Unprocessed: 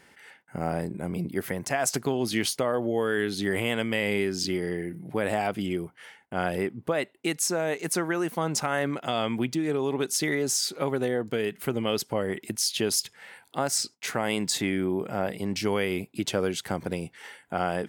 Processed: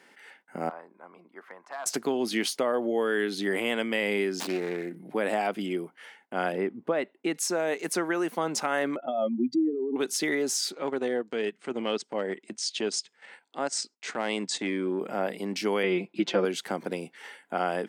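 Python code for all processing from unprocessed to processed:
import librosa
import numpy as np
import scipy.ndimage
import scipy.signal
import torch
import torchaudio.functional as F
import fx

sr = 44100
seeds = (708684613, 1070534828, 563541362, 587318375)

y = fx.chain(x, sr, fx.bandpass_q(hz=1100.0, q=3.2),
    fx.overload_stage(gain_db=29.0), at=(0.69, 1.86))
y = fx.chain(y, sr, fx.self_delay(depth_ms=0.35),
    fx.running_max(window=3), at=(4.4, 4.96))
y = fx.chain(y, sr, fx.lowpass(hz=2000.0, slope=6),
    fx.low_shelf(hz=120.0, db=6.0), at=(6.52, 7.35))
y = fx.chain(y, sr, fx.spec_expand(power=2.7),
    fx.comb(ms=3.4, depth=0.56), at=(8.96, 9.96))
y = fx.chain(y, sr, fx.steep_lowpass(hz=9000.0, slope=96),
    fx.transient(attack_db=-6, sustain_db=-11), at=(10.72, 15.01))
y = fx.chain(y, sr, fx.lowpass(hz=3900.0, slope=12),
    fx.comb(ms=5.8, depth=0.9), at=(15.83, 16.45))
y = scipy.signal.sosfilt(scipy.signal.butter(4, 210.0, 'highpass', fs=sr, output='sos'), y)
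y = fx.high_shelf(y, sr, hz=8100.0, db=-7.0)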